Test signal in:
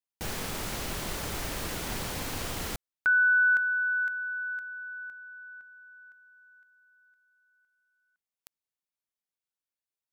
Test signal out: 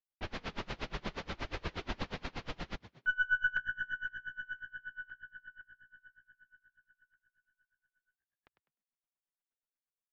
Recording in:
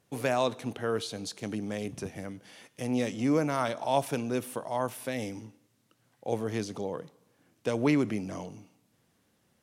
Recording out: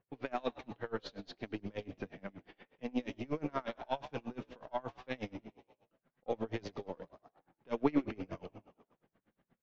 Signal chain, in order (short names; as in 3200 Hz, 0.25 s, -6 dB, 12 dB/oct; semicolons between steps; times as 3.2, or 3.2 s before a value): half-wave gain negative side -3 dB; notches 60/120 Hz; low-pass opened by the level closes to 2100 Hz, open at -28 dBFS; high shelf 2700 Hz +9 dB; vocal rider within 4 dB 2 s; flange 0.6 Hz, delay 1.8 ms, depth 4.6 ms, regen -49%; air absorption 310 m; frequency-shifting echo 0.101 s, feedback 61%, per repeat +61 Hz, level -15 dB; downsampling 16000 Hz; dB-linear tremolo 8.4 Hz, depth 29 dB; gain +2.5 dB